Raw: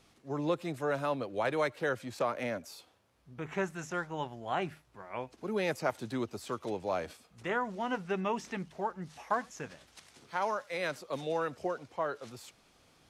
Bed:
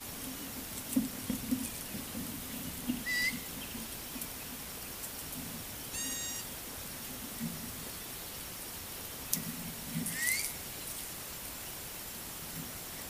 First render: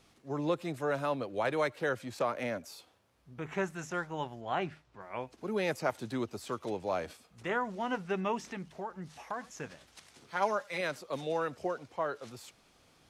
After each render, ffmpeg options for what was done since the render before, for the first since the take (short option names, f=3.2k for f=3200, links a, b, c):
-filter_complex "[0:a]asettb=1/sr,asplit=3[a][b][c];[a]atrim=end=4.414[d];[b]atrim=start=4.41:end=5.01,asetpts=PTS-STARTPTS,afade=t=in:d=0.004:c=qsin,afade=t=out:st=0.596:d=0.004:c=qsin,lowpass=6k[e];[c]atrim=start=5.006[f];[d][e]acrossfade=d=0.004:c1=hsin:c2=qsin[g];[g][f]acrossfade=d=0.004:c1=qsin:c2=hsin,asettb=1/sr,asplit=3[h][i][j];[h]atrim=end=8.374[k];[i]atrim=start=8.37:end=9.57,asetpts=PTS-STARTPTS,afade=t=in:d=0.004:c=qsin,afade=t=out:st=1.196:d=0.004:c=qsin,acompressor=threshold=-38dB:ratio=2:attack=3.2:release=140:knee=1:detection=peak[l];[j]atrim=start=9.566[m];[k][l]acrossfade=d=0.004:c1=hsin:c2=qsin[n];[n][m]acrossfade=d=0.004:c1=qsin:c2=hsin,asettb=1/sr,asplit=3[o][p][q];[o]atrim=end=10.364[r];[p]atrim=start=10.36:end=10.81,asetpts=PTS-STARTPTS,afade=t=in:d=0.004:c=qsin,afade=t=out:st=0.446:d=0.004:c=qsin,aecho=1:1:5:0.65,atrim=end_sample=19845[s];[q]atrim=start=10.806[t];[r][s]acrossfade=d=0.004:c1=hsin:c2=qsin[u];[u][t]acrossfade=d=0.004:c1=qsin:c2=hsin"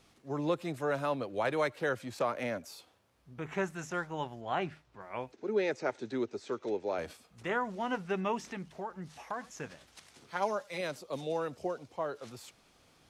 -filter_complex "[0:a]asplit=3[a][b][c];[a]afade=t=out:st=5.31:d=0.02[d];[b]highpass=160,equalizer=f=170:t=q:w=4:g=-8,equalizer=f=400:t=q:w=4:g=6,equalizer=f=710:t=q:w=4:g=-4,equalizer=f=1.1k:t=q:w=4:g=-7,equalizer=f=3k:t=q:w=4:g=-6,equalizer=f=4.8k:t=q:w=4:g=-5,lowpass=f=6.3k:w=0.5412,lowpass=f=6.3k:w=1.3066,afade=t=in:st=5.31:d=0.02,afade=t=out:st=6.97:d=0.02[e];[c]afade=t=in:st=6.97:d=0.02[f];[d][e][f]amix=inputs=3:normalize=0,asettb=1/sr,asplit=3[g][h][i];[g]atrim=end=10.374[j];[h]atrim=start=10.37:end=12.18,asetpts=PTS-STARTPTS,afade=t=in:d=0.004:c=qsin,afade=t=out:st=1.806:d=0.004:c=qsin,equalizer=f=1.6k:t=o:w=1.4:g=-6[k];[i]atrim=start=12.176[l];[j][k]acrossfade=d=0.004:c1=hsin:c2=qsin[m];[m][l]acrossfade=d=0.004:c1=qsin:c2=hsin"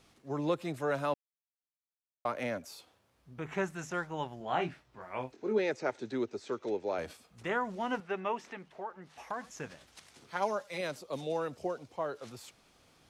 -filter_complex "[0:a]asettb=1/sr,asplit=3[a][b][c];[a]atrim=end=4.384[d];[b]atrim=start=4.38:end=5.59,asetpts=PTS-STARTPTS,afade=t=in:d=0.004:c=qsin,afade=t=out:st=1.206:d=0.004:c=qsin,asplit=2[e][f];[f]adelay=23,volume=-5dB[g];[e][g]amix=inputs=2:normalize=0,atrim=end_sample=53361[h];[c]atrim=start=5.586[i];[d][h]acrossfade=d=0.004:c1=hsin:c2=qsin[j];[j][i]acrossfade=d=0.004:c1=qsin:c2=hsin,asettb=1/sr,asplit=3[k][l][m];[k]atrim=end=8.004[n];[l]atrim=start=8:end=9.18,asetpts=PTS-STARTPTS,afade=t=in:d=0.004:c=qsin,afade=t=out:st=1.176:d=0.004:c=qsin,bass=f=250:g=-13,treble=f=4k:g=-10[o];[m]atrim=start=9.176[p];[n][o]acrossfade=d=0.004:c1=hsin:c2=qsin[q];[q][p]acrossfade=d=0.004:c1=qsin:c2=hsin,asplit=3[r][s][t];[r]atrim=end=1.14,asetpts=PTS-STARTPTS,afade=t=out:st=1.136:d=0.004:c=hsin[u];[s]atrim=start=1.14:end=2.25,asetpts=PTS-STARTPTS,volume=0[v];[t]atrim=start=2.25,asetpts=PTS-STARTPTS,afade=t=in:d=0.004:c=hsin[w];[u][v][w]concat=n=3:v=0:a=1"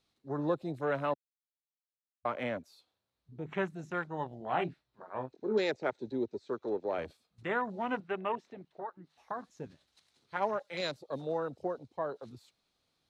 -af "equalizer=f=4k:t=o:w=0.41:g=10.5,afwtdn=0.00891"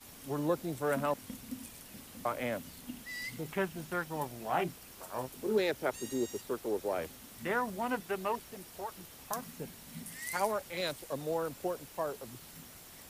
-filter_complex "[1:a]volume=-9dB[a];[0:a][a]amix=inputs=2:normalize=0"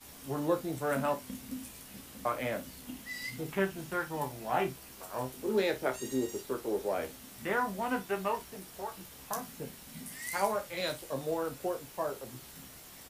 -filter_complex "[0:a]asplit=2[a][b];[b]adelay=31,volume=-10.5dB[c];[a][c]amix=inputs=2:normalize=0,aecho=1:1:15|59:0.473|0.168"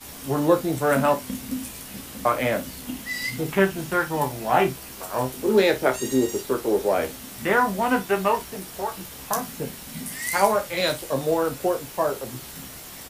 -af "volume=11dB"